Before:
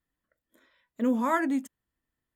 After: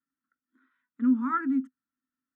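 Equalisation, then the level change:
pair of resonant band-passes 590 Hz, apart 2.4 octaves
+4.5 dB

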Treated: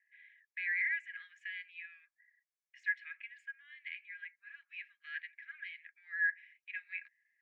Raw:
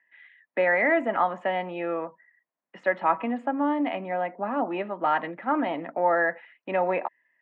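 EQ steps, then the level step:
Chebyshev high-pass with heavy ripple 1,600 Hz, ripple 9 dB
−1.5 dB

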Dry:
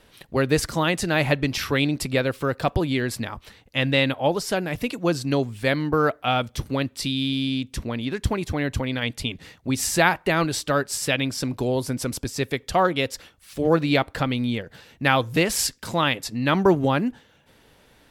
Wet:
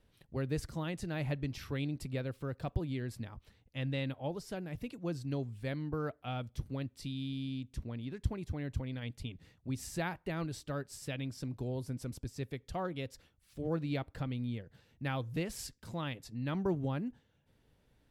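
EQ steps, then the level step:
drawn EQ curve 120 Hz 0 dB, 220 Hz −5 dB, 1,100 Hz −12 dB
−8.5 dB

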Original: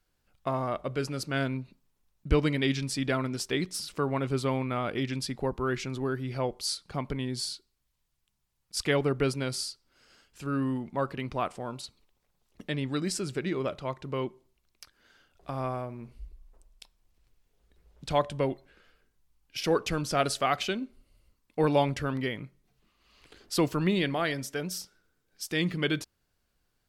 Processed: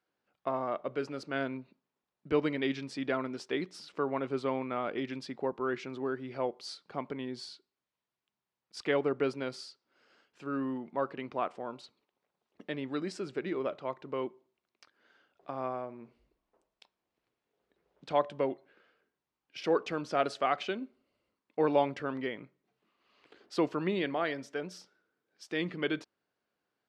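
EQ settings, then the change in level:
high-pass filter 290 Hz 12 dB per octave
head-to-tape spacing loss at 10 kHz 23 dB
0.0 dB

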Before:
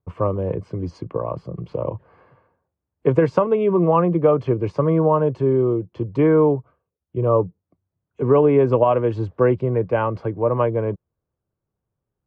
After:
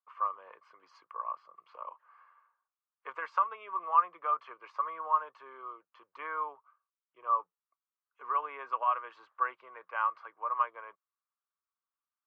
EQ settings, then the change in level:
four-pole ladder band-pass 1,300 Hz, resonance 65%
spectral tilt +4.5 dB per octave
0.0 dB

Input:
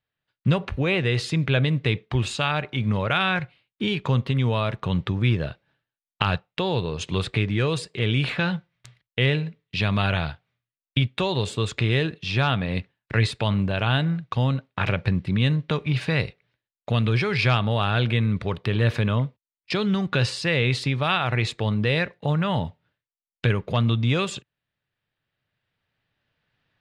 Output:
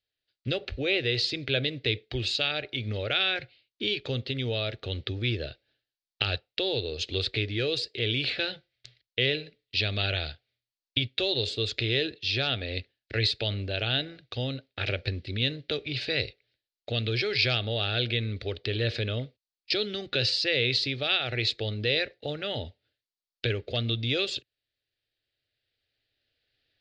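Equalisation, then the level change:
low-pass with resonance 4,500 Hz, resonance Q 3.5
phaser with its sweep stopped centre 420 Hz, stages 4
−3.0 dB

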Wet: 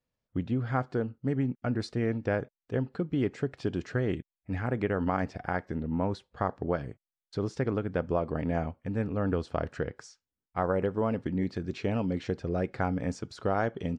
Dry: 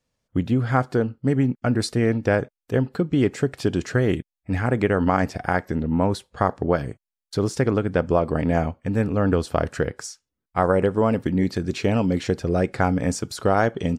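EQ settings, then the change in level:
high-frequency loss of the air 110 metres
−8.5 dB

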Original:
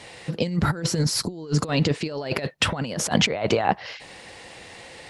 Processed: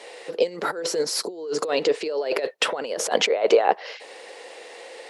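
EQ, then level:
four-pole ladder high-pass 390 Hz, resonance 55%
+9.0 dB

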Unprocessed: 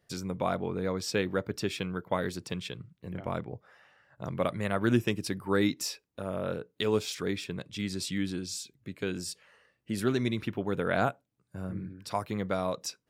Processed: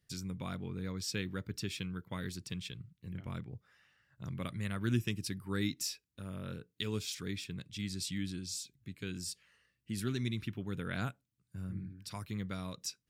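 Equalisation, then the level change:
guitar amp tone stack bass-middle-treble 6-0-2
+12.0 dB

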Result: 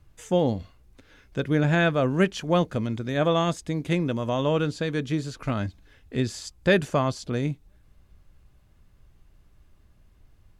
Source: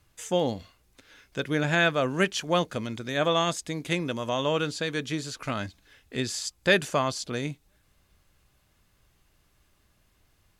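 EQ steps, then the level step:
spectral tilt −2.5 dB per octave
high-shelf EQ 10,000 Hz +4 dB
0.0 dB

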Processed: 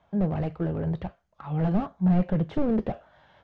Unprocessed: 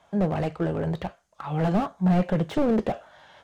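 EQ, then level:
high-frequency loss of the air 150 metres
low-shelf EQ 230 Hz +9.5 dB
−6.0 dB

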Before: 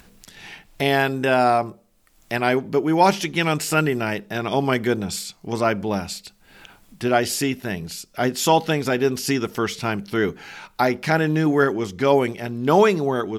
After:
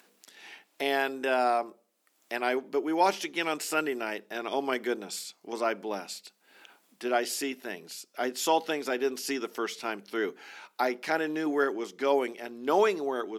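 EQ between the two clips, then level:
high-pass filter 280 Hz 24 dB per octave
−8.0 dB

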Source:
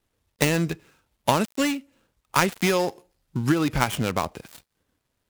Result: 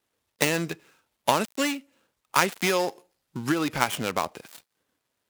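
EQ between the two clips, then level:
high-pass filter 360 Hz 6 dB per octave
0.0 dB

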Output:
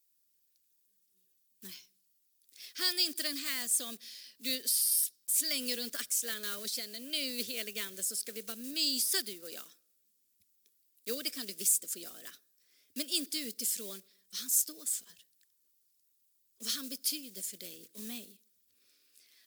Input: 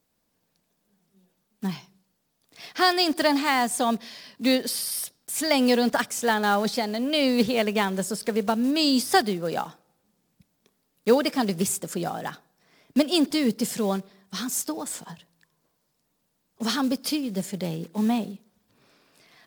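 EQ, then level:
first-order pre-emphasis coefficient 0.9
parametric band 97 Hz +10 dB 0.47 octaves
phaser with its sweep stopped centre 350 Hz, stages 4
0.0 dB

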